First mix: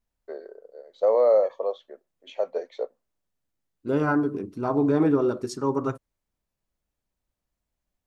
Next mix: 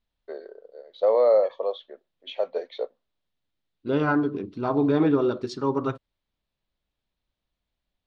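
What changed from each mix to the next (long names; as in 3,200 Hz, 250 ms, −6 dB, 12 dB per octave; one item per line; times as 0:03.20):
master: add low-pass with resonance 3,700 Hz, resonance Q 2.8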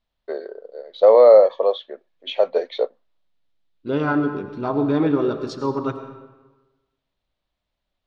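first voice +8.5 dB
reverb: on, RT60 1.2 s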